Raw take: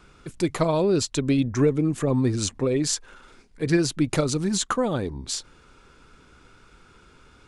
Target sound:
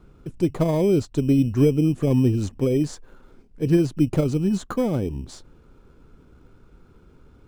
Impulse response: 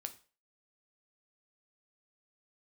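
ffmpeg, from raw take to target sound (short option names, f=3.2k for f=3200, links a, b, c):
-filter_complex "[0:a]tiltshelf=f=970:g=9,asplit=2[a][b];[b]acrusher=samples=16:mix=1:aa=0.000001,volume=-10.5dB[c];[a][c]amix=inputs=2:normalize=0,volume=-6.5dB"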